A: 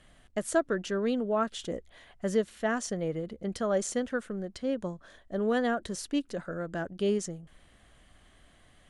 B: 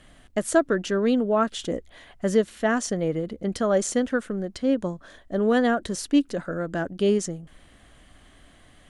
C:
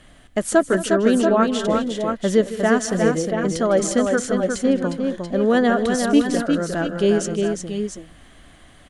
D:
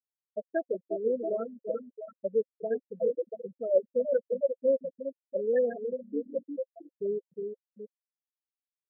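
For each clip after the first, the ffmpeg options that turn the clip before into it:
-af "equalizer=f=280:t=o:w=0.36:g=4.5,volume=6dB"
-af "aecho=1:1:154|158|220|357|679|688:0.133|0.106|0.15|0.562|0.237|0.355,volume=3.5dB"
-filter_complex "[0:a]afftfilt=real='re*gte(hypot(re,im),0.631)':imag='im*gte(hypot(re,im),0.631)':win_size=1024:overlap=0.75,asplit=3[a][b][c];[a]bandpass=f=530:t=q:w=8,volume=0dB[d];[b]bandpass=f=1.84k:t=q:w=8,volume=-6dB[e];[c]bandpass=f=2.48k:t=q:w=8,volume=-9dB[f];[d][e][f]amix=inputs=3:normalize=0,bandreject=f=720:w=15"

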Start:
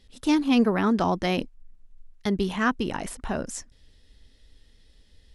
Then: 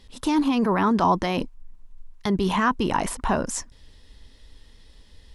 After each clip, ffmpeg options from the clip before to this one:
-af "alimiter=limit=-20.5dB:level=0:latency=1:release=11,equalizer=f=1k:w=3:g=9.5,volume=6dB"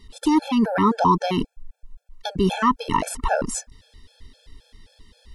-af "afftfilt=real='re*gt(sin(2*PI*3.8*pts/sr)*(1-2*mod(floor(b*sr/1024/450),2)),0)':imag='im*gt(sin(2*PI*3.8*pts/sr)*(1-2*mod(floor(b*sr/1024/450),2)),0)':win_size=1024:overlap=0.75,volume=4.5dB"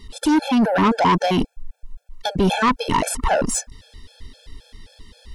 -af "asoftclip=type=tanh:threshold=-18.5dB,volume=6.5dB"

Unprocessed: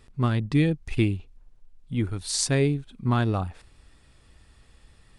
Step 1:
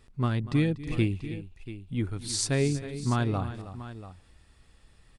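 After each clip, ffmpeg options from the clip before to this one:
-af "aecho=1:1:242|318|687:0.141|0.211|0.188,volume=-3.5dB"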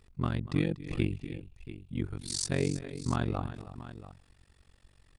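-af "tremolo=f=46:d=1"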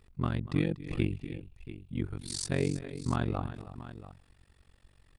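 -af "equalizer=f=6.2k:t=o:w=1:g=-4.5"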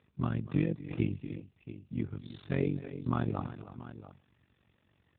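-ar 8000 -c:a libopencore_amrnb -b:a 7400

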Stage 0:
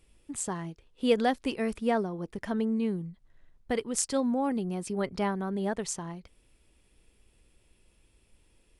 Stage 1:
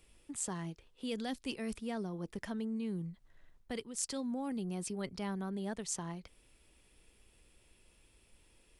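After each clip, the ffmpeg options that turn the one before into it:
-filter_complex "[0:a]acrossover=split=280|3000[a][b][c];[b]acompressor=threshold=-45dB:ratio=2[d];[a][d][c]amix=inputs=3:normalize=0,lowshelf=f=430:g=-5,areverse,acompressor=threshold=-37dB:ratio=6,areverse,volume=2dB"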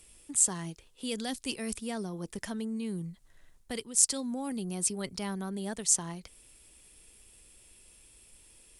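-af "equalizer=f=9.3k:t=o:w=1.7:g=13,volume=2.5dB"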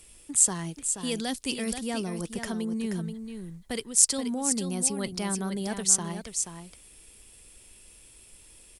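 -af "aecho=1:1:480:0.398,volume=4dB"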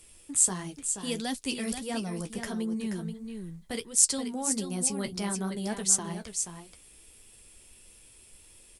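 -af "flanger=delay=8.1:depth=7:regen=-34:speed=1.5:shape=triangular,volume=2dB"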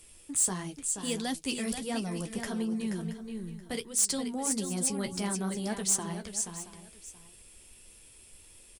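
-af "asoftclip=type=tanh:threshold=-20dB,aecho=1:1:676:0.168"

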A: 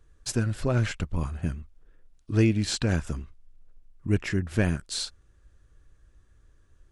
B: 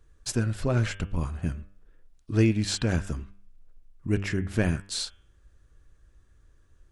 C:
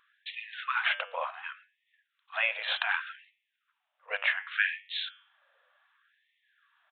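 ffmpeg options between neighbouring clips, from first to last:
-af "bandreject=f=99.01:t=h:w=4,bandreject=f=198.02:t=h:w=4,bandreject=f=297.03:t=h:w=4,bandreject=f=396.04:t=h:w=4,bandreject=f=495.05:t=h:w=4,bandreject=f=594.06:t=h:w=4,bandreject=f=693.07:t=h:w=4,bandreject=f=792.08:t=h:w=4,bandreject=f=891.09:t=h:w=4,bandreject=f=990.1:t=h:w=4,bandreject=f=1.08911k:t=h:w=4,bandreject=f=1.18812k:t=h:w=4,bandreject=f=1.28713k:t=h:w=4,bandreject=f=1.38614k:t=h:w=4,bandreject=f=1.48515k:t=h:w=4,bandreject=f=1.58416k:t=h:w=4,bandreject=f=1.68317k:t=h:w=4,bandreject=f=1.78218k:t=h:w=4,bandreject=f=1.88119k:t=h:w=4,bandreject=f=1.9802k:t=h:w=4,bandreject=f=2.07921k:t=h:w=4,bandreject=f=2.17822k:t=h:w=4,bandreject=f=2.27723k:t=h:w=4,bandreject=f=2.37624k:t=h:w=4,bandreject=f=2.47525k:t=h:w=4,bandreject=f=2.57426k:t=h:w=4,bandreject=f=2.67327k:t=h:w=4,bandreject=f=2.77228k:t=h:w=4,bandreject=f=2.87129k:t=h:w=4,bandreject=f=2.9703k:t=h:w=4,bandreject=f=3.06931k:t=h:w=4,bandreject=f=3.16832k:t=h:w=4,bandreject=f=3.26733k:t=h:w=4,bandreject=f=3.36634k:t=h:w=4,bandreject=f=3.46535k:t=h:w=4"
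-af "aresample=8000,aresample=44100,afftfilt=real='re*gte(b*sr/1024,470*pow(1800/470,0.5+0.5*sin(2*PI*0.67*pts/sr)))':imag='im*gte(b*sr/1024,470*pow(1800/470,0.5+0.5*sin(2*PI*0.67*pts/sr)))':win_size=1024:overlap=0.75,volume=8.5dB"

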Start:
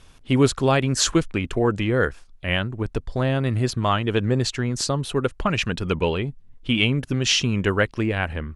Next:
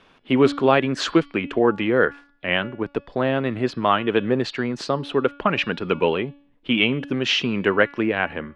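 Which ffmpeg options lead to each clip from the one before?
-filter_complex "[0:a]acrossover=split=180 3700:gain=0.0794 1 0.0631[a][b][c];[a][b][c]amix=inputs=3:normalize=0,bandreject=f=284.5:t=h:w=4,bandreject=f=569:t=h:w=4,bandreject=f=853.5:t=h:w=4,bandreject=f=1.138k:t=h:w=4,bandreject=f=1.4225k:t=h:w=4,bandreject=f=1.707k:t=h:w=4,bandreject=f=1.9915k:t=h:w=4,bandreject=f=2.276k:t=h:w=4,bandreject=f=2.5605k:t=h:w=4,bandreject=f=2.845k:t=h:w=4,bandreject=f=3.1295k:t=h:w=4,bandreject=f=3.414k:t=h:w=4,bandreject=f=3.6985k:t=h:w=4,bandreject=f=3.983k:t=h:w=4,bandreject=f=4.2675k:t=h:w=4,bandreject=f=4.552k:t=h:w=4,bandreject=f=4.8365k:t=h:w=4,bandreject=f=5.121k:t=h:w=4,bandreject=f=5.4055k:t=h:w=4,volume=3.5dB"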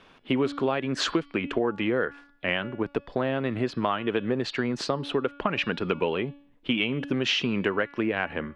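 -af "acompressor=threshold=-22dB:ratio=6"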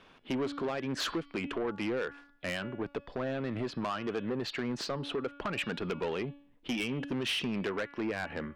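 -af "asoftclip=type=tanh:threshold=-24dB,volume=-3.5dB"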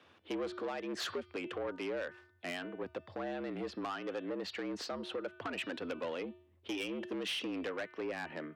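-af "afreqshift=76,volume=-5dB"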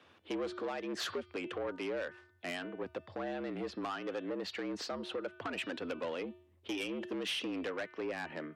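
-af "volume=1dB" -ar 44100 -c:a libmp3lame -b:a 64k

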